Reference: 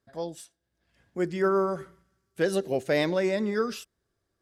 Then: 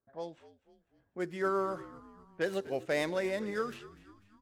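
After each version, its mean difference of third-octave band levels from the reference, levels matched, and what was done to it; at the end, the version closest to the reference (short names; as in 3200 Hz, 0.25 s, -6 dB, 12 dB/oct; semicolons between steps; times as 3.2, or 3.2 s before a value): 5.0 dB: median filter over 9 samples; low-pass opened by the level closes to 1100 Hz, open at -25 dBFS; low shelf 450 Hz -8.5 dB; frequency-shifting echo 0.248 s, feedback 50%, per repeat -69 Hz, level -18 dB; gain -3 dB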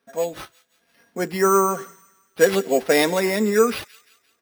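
7.0 dB: HPF 250 Hz 12 dB/oct; comb 4.3 ms, depth 62%; sample-and-hold 6×; on a send: thin delay 0.173 s, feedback 44%, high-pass 2100 Hz, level -18 dB; on the sum: gain +8 dB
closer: first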